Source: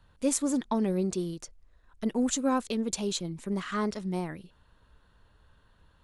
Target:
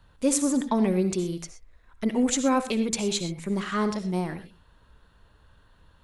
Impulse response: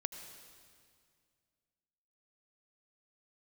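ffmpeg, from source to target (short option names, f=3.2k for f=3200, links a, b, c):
-filter_complex "[0:a]asettb=1/sr,asplit=3[a][b][c];[a]atrim=end=0.754[d];[b]atrim=start=0.75:end=3.48,asetpts=PTS-STARTPTS,afade=t=in:d=0.004:c=qsin,afade=t=out:st=2.726:d=0.004:c=qsin,equalizer=f=2.2k:t=o:w=0.33:g=9[e];[c]atrim=start=3.476[f];[d][e]acrossfade=d=0.004:c1=hsin:c2=qsin[g];[g][f]acrossfade=d=0.004:c1=qsin:c2=hsin[h];[1:a]atrim=start_sample=2205,afade=t=out:st=0.22:d=0.01,atrim=end_sample=10143,asetrate=57330,aresample=44100[i];[h][i]afir=irnorm=-1:irlink=0,volume=7.5dB"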